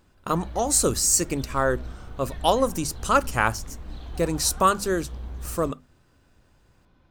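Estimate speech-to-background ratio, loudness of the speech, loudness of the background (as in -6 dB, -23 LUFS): 16.0 dB, -24.0 LUFS, -40.0 LUFS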